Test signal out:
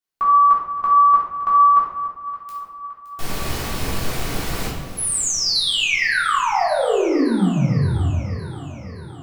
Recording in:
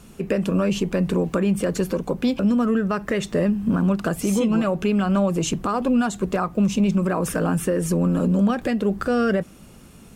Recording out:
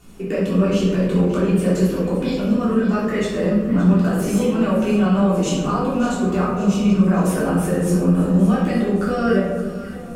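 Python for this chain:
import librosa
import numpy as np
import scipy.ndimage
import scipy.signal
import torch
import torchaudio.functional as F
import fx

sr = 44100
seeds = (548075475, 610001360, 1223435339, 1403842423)

y = fx.echo_alternate(x, sr, ms=284, hz=1100.0, feedback_pct=77, wet_db=-11.5)
y = fx.room_shoebox(y, sr, seeds[0], volume_m3=400.0, walls='mixed', distance_m=3.4)
y = F.gain(torch.from_numpy(y), -7.5).numpy()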